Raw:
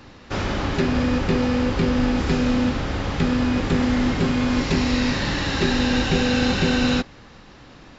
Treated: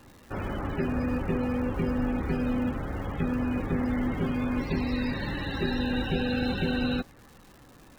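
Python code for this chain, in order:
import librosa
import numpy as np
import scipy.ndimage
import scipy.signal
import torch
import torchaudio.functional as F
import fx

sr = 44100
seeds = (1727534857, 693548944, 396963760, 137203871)

y = fx.spec_topn(x, sr, count=64)
y = fx.dmg_crackle(y, sr, seeds[0], per_s=420.0, level_db=-37.0)
y = y * 10.0 ** (-7.5 / 20.0)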